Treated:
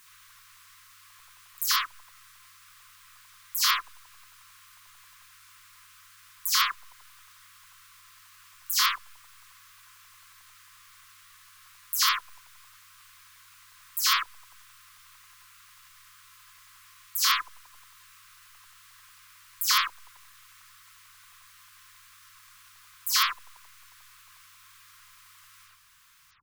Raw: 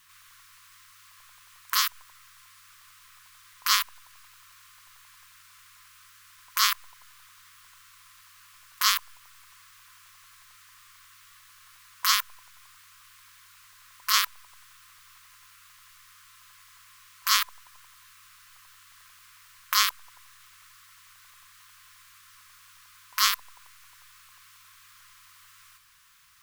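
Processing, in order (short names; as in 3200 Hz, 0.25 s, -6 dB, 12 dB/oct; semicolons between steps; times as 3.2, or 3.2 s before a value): spectral delay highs early, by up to 0.116 s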